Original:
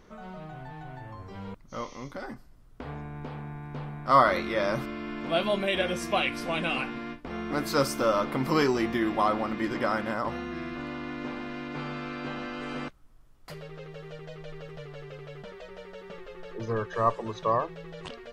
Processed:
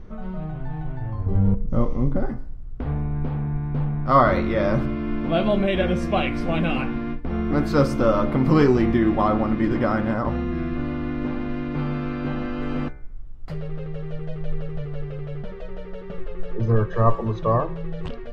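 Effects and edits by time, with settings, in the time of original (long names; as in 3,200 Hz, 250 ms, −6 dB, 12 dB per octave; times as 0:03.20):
0:01.26–0:02.26: tilt shelving filter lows +8.5 dB, about 1,200 Hz
whole clip: RIAA equalisation playback; notch filter 990 Hz, Q 24; hum removal 67.27 Hz, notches 36; level +3.5 dB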